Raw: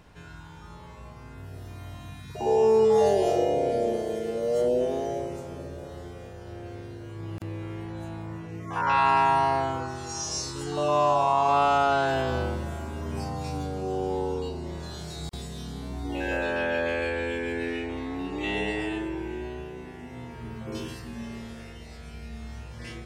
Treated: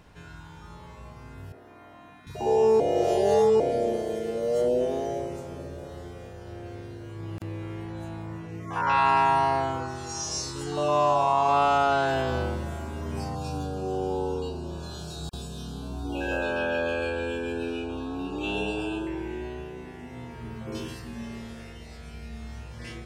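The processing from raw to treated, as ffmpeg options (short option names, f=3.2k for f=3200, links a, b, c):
-filter_complex "[0:a]asettb=1/sr,asplit=3[a][b][c];[a]atrim=end=1.524[d];[b]atrim=start=1.52:end=2.27,asetpts=PTS-STARTPTS,afade=t=in:d=0.004:c=qsin,afade=t=out:st=0.746:d=0.004:c=qsin,acrossover=split=240 2300:gain=0.0708 1 0.158[e][f][g];[e][f][g]amix=inputs=3:normalize=0[h];[c]atrim=start=2.266[i];[d][h]acrossfade=d=0.004:c1=hsin:c2=qsin[j];[j][i]acrossfade=d=0.004:c1=qsin:c2=hsin,asettb=1/sr,asplit=3[k][l][m];[k]atrim=end=13.354[n];[l]atrim=start=13.35:end=19.07,asetpts=PTS-STARTPTS,afade=t=in:d=0.004:c=qsin,afade=t=out:st=5.716:d=0.004:c=qsin,asuperstop=centerf=2000:order=20:qfactor=2.9[o];[m]atrim=start=19.066[p];[n][o]acrossfade=d=0.004:c1=hsin:c2=qsin[q];[q][p]acrossfade=d=0.004:c1=qsin:c2=hsin,asplit=3[r][s][t];[r]atrim=end=2.802[u];[s]atrim=start=2.798:end=3.602,asetpts=PTS-STARTPTS,areverse[v];[t]atrim=start=3.598[w];[u][v]acrossfade=d=0.004:c1=hsin:c2=hsin[x];[x][w]acrossfade=d=0.004:c1=hsin:c2=hsin"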